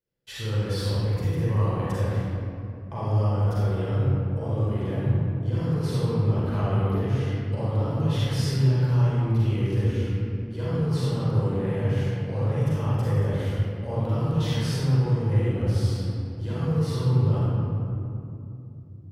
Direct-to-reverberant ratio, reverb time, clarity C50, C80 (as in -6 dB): -9.5 dB, 2.8 s, -6.5 dB, -3.0 dB